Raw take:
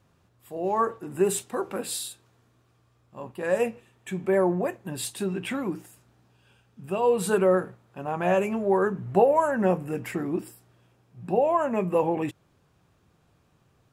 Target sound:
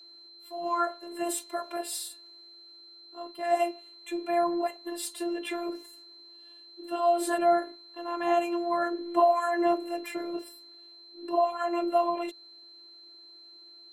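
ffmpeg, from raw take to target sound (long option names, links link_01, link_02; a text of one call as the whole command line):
ffmpeg -i in.wav -filter_complex "[0:a]afreqshift=160,acrossover=split=160[link_01][link_02];[link_01]alimiter=level_in=30dB:limit=-24dB:level=0:latency=1:release=54,volume=-30dB[link_03];[link_03][link_02]amix=inputs=2:normalize=0,afftfilt=real='hypot(re,im)*cos(PI*b)':imag='0':win_size=512:overlap=0.75,aeval=exprs='val(0)+0.00355*sin(2*PI*4100*n/s)':channel_layout=same" out.wav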